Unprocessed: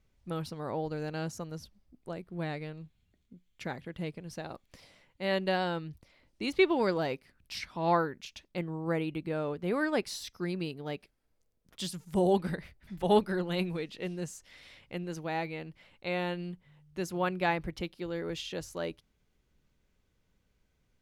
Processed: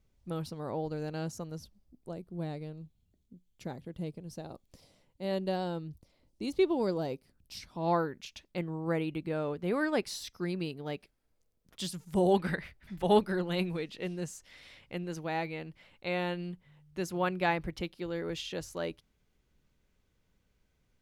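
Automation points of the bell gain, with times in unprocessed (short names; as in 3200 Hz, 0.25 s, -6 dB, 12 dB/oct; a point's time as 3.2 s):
bell 1900 Hz 1.9 oct
1.53 s -5 dB
2.35 s -13 dB
7.63 s -13 dB
8.2 s -1 dB
12.19 s -1 dB
12.5 s +8 dB
13.1 s 0 dB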